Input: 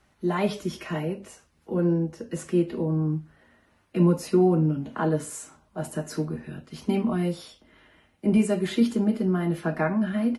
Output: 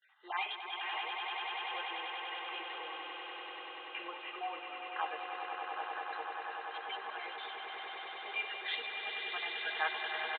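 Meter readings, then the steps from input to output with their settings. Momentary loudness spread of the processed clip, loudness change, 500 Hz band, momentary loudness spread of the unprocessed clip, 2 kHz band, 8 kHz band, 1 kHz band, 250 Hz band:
7 LU, −13.0 dB, −20.5 dB, 13 LU, +2.0 dB, below −40 dB, −2.0 dB, −35.5 dB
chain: time-frequency cells dropped at random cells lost 29%
noise gate with hold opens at −57 dBFS
high-pass filter 950 Hz 24 dB per octave
dynamic equaliser 1,300 Hz, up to −7 dB, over −51 dBFS, Q 1.3
comb filter 2.5 ms, depth 58%
on a send: echo that builds up and dies away 97 ms, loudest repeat 8, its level −7.5 dB
on the sum: downsampling to 8,000 Hz
level +1 dB

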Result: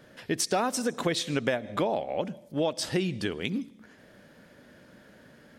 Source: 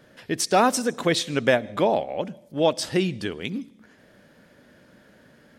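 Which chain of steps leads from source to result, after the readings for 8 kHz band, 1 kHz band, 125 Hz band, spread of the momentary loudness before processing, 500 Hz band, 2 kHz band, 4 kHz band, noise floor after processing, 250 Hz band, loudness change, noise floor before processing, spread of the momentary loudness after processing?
−3.5 dB, −7.5 dB, −3.5 dB, 12 LU, −6.5 dB, −6.0 dB, −4.5 dB, −56 dBFS, −4.0 dB, −5.5 dB, −56 dBFS, 7 LU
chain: downward compressor 5 to 1, threshold −24 dBFS, peak gain reduction 9.5 dB

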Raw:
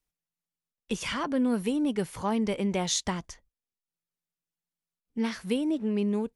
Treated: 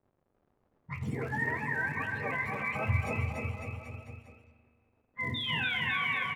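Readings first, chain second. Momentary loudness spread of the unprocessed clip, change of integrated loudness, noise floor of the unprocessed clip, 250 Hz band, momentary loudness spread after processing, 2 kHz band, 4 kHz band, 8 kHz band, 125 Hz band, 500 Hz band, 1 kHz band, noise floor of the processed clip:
8 LU, −3.0 dB, below −85 dBFS, −14.0 dB, 15 LU, +10.5 dB, −0.5 dB, −23.0 dB, +4.0 dB, −9.5 dB, −0.5 dB, −76 dBFS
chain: frequency axis turned over on the octave scale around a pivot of 680 Hz
in parallel at +2 dB: brickwall limiter −24.5 dBFS, peak gain reduction 11.5 dB
on the sum: notch comb filter 180 Hz
sound drawn into the spectrogram fall, 0:05.34–0:05.94, 1,700–3,700 Hz −26 dBFS
flanger 1.4 Hz, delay 8.6 ms, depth 8.1 ms, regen +53%
surface crackle 140 per second −38 dBFS
low-pass that shuts in the quiet parts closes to 550 Hz, open at −27.5 dBFS
on a send: bouncing-ball delay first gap 290 ms, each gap 0.9×, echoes 5
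on the sum: spring reverb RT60 1.9 s, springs 38/42 ms, chirp 45 ms, DRR 9.5 dB
level −5.5 dB

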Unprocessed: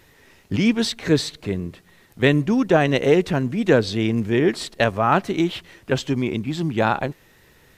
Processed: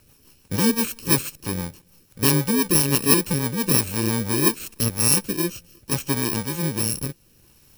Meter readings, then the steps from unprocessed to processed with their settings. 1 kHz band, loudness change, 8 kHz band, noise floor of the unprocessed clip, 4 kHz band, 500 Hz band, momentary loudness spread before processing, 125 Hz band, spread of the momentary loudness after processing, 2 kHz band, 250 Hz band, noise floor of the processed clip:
−7.0 dB, 0.0 dB, +15.5 dB, −54 dBFS, +1.5 dB, −8.0 dB, 10 LU, −1.5 dB, 11 LU, −5.0 dB, −3.5 dB, −57 dBFS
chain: samples in bit-reversed order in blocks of 64 samples
rotating-speaker cabinet horn 6 Hz, later 0.7 Hz, at 0:04.28
level +1 dB

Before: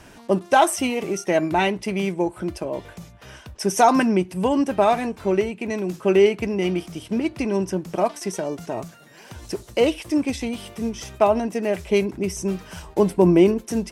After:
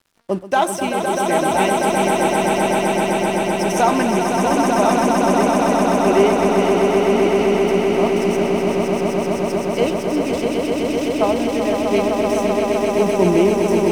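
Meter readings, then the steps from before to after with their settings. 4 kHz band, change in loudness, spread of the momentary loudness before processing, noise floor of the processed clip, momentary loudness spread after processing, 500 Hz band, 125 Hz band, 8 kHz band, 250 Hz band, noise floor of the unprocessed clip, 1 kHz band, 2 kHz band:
+5.5 dB, +4.5 dB, 13 LU, −24 dBFS, 5 LU, +5.5 dB, +3.5 dB, +4.5 dB, +4.0 dB, −48 dBFS, +6.0 dB, +6.0 dB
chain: dead-zone distortion −41 dBFS
echo that builds up and dies away 128 ms, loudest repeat 8, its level −5 dB
level −1 dB

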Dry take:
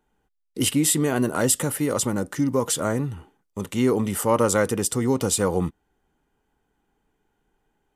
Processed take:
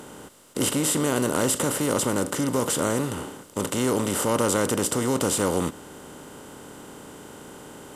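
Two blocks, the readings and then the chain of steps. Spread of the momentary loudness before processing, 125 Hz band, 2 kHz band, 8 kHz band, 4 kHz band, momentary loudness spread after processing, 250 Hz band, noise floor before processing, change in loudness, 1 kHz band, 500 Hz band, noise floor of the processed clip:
11 LU, −3.0 dB, 0.0 dB, −1.0 dB, 0.0 dB, 20 LU, −2.0 dB, −74 dBFS, −1.5 dB, 0.0 dB, −1.0 dB, −45 dBFS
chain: compressor on every frequency bin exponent 0.4
bit reduction 11 bits
level −7 dB

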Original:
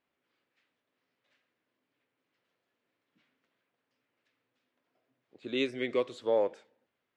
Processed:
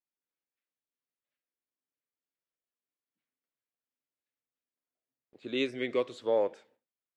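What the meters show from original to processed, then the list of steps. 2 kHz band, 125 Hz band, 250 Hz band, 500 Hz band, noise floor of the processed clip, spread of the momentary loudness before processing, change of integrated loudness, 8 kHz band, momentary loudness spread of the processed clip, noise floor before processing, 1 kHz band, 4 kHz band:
0.0 dB, 0.0 dB, 0.0 dB, 0.0 dB, below −85 dBFS, 7 LU, 0.0 dB, can't be measured, 7 LU, −84 dBFS, 0.0 dB, 0.0 dB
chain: noise gate with hold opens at −59 dBFS

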